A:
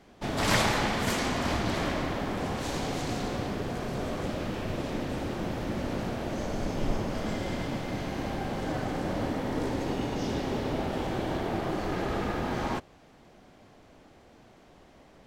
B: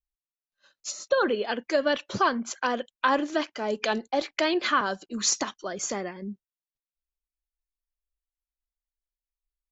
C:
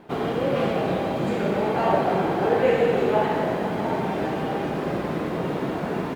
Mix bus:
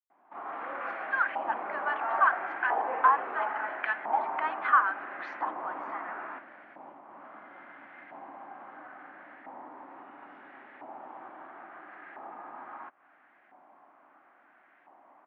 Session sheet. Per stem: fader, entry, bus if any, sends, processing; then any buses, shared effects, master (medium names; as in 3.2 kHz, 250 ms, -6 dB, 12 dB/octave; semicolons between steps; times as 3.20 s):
-1.5 dB, 0.10 s, no send, compression 10:1, threshold -38 dBFS, peak gain reduction 18 dB
-3.0 dB, 0.00 s, no send, steep high-pass 800 Hz
-7.5 dB, 0.25 s, no send, high-pass 380 Hz 6 dB/octave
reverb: none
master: level rider gain up to 7 dB; LFO band-pass saw up 0.74 Hz 890–1800 Hz; cabinet simulation 220–2400 Hz, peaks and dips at 290 Hz +6 dB, 460 Hz -9 dB, 750 Hz +3 dB